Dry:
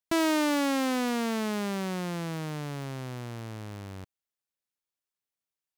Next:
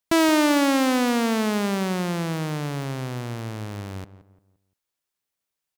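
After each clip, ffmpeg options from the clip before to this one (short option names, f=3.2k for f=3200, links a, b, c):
-filter_complex "[0:a]asplit=2[a][b];[b]adelay=173,lowpass=f=1.5k:p=1,volume=-14dB,asplit=2[c][d];[d]adelay=173,lowpass=f=1.5k:p=1,volume=0.37,asplit=2[e][f];[f]adelay=173,lowpass=f=1.5k:p=1,volume=0.37,asplit=2[g][h];[h]adelay=173,lowpass=f=1.5k:p=1,volume=0.37[i];[a][c][e][g][i]amix=inputs=5:normalize=0,volume=7dB"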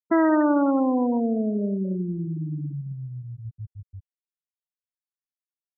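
-af "afftfilt=real='re*gte(hypot(re,im),0.224)':imag='im*gte(hypot(re,im),0.224)':win_size=1024:overlap=0.75"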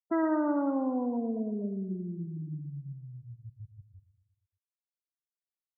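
-af "afftfilt=real='re*gte(hypot(re,im),0.141)':imag='im*gte(hypot(re,im),0.141)':win_size=1024:overlap=0.75,aecho=1:1:117|234|351|468|585:0.237|0.126|0.0666|0.0353|0.0187,volume=-8.5dB"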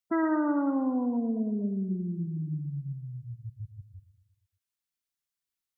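-af "equalizer=f=570:w=0.71:g=-9,volume=6.5dB"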